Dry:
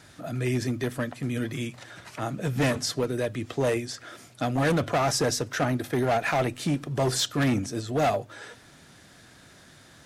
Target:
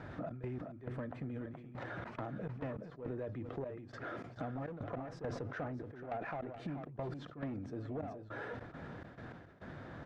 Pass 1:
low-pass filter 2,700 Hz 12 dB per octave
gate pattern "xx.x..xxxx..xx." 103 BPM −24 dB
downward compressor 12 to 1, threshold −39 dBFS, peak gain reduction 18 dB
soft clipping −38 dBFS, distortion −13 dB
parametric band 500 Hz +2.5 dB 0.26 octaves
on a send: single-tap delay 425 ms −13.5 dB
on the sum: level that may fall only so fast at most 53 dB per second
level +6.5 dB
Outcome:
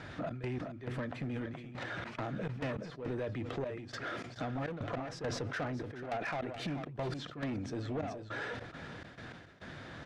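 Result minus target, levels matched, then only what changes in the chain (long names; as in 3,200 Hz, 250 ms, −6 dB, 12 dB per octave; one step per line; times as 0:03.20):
downward compressor: peak gain reduction −6 dB; 2,000 Hz band +3.0 dB
change: low-pass filter 1,300 Hz 12 dB per octave
change: downward compressor 12 to 1, threshold −45.5 dBFS, peak gain reduction 24 dB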